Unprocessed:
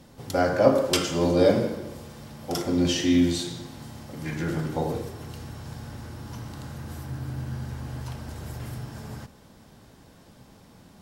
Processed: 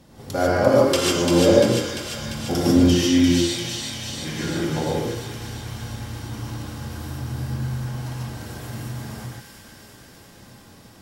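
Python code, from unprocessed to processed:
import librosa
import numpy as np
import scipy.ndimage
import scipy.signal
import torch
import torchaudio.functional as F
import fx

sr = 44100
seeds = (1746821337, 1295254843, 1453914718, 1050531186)

y = fx.low_shelf(x, sr, hz=380.0, db=9.5, at=(2.13, 2.8))
y = fx.echo_wet_highpass(y, sr, ms=345, feedback_pct=71, hz=1800.0, wet_db=-3.5)
y = fx.rev_gated(y, sr, seeds[0], gate_ms=170, shape='rising', drr_db=-3.5)
y = F.gain(torch.from_numpy(y), -1.0).numpy()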